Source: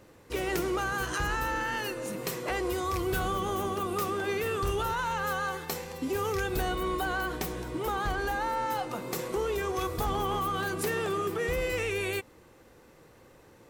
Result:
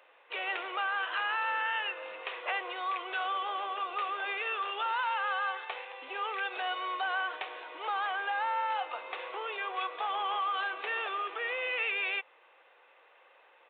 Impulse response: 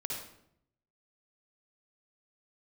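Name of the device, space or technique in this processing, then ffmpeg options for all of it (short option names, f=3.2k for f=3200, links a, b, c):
musical greeting card: -af "aresample=8000,aresample=44100,highpass=f=620:w=0.5412,highpass=f=620:w=1.3066,equalizer=f=2.6k:t=o:w=0.41:g=5.5"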